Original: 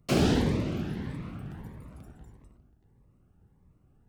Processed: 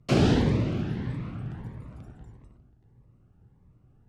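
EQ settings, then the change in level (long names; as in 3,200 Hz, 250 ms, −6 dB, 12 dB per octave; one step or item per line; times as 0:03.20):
high-frequency loss of the air 62 metres
parametric band 120 Hz +7 dB 0.31 octaves
+2.0 dB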